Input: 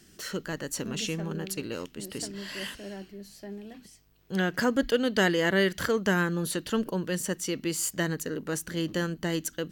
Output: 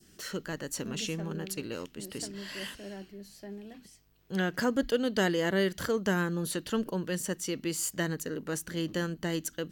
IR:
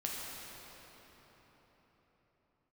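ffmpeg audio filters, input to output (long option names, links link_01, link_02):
-af "adynamicequalizer=threshold=0.01:dfrequency=2000:dqfactor=0.96:tfrequency=2000:tqfactor=0.96:attack=5:release=100:ratio=0.375:range=2.5:mode=cutabove:tftype=bell,volume=-2.5dB"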